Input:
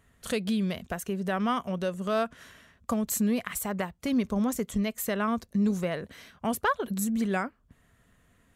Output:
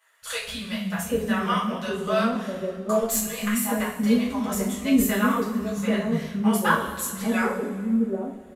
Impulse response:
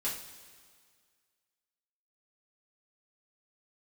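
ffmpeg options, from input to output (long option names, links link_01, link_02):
-filter_complex "[0:a]flanger=delay=8.9:depth=6.3:regen=53:speed=1.4:shape=triangular,acrossover=split=190|650[link_01][link_02][link_03];[link_01]adelay=220[link_04];[link_02]adelay=790[link_05];[link_04][link_05][link_03]amix=inputs=3:normalize=0[link_06];[1:a]atrim=start_sample=2205[link_07];[link_06][link_07]afir=irnorm=-1:irlink=0,asettb=1/sr,asplit=3[link_08][link_09][link_10];[link_08]atrim=end=3.014[link_11];[link_09]atrim=start=3.01:end=3.55,asetpts=PTS-STARTPTS,afade=type=in:duration=0.004:curve=qsin,afade=type=out:start_time=0.536:duration=0.004:curve=qsin,aeval=exprs='0.112*(cos(1*acos(clip(val(0)/0.112,-1,1)))-cos(1*PI/2))+0.00794*(cos(4*acos(clip(val(0)/0.112,-1,1)))-cos(4*PI/2))':channel_layout=same[link_12];[link_10]atrim=start=3.546[link_13];[link_11][link_12]acrossfade=duration=0.004:curve1=hsin:curve2=qsin[link_14];[link_14][link_13]acrossfade=duration=0.004:curve1=qsin:curve2=hsin,volume=7dB"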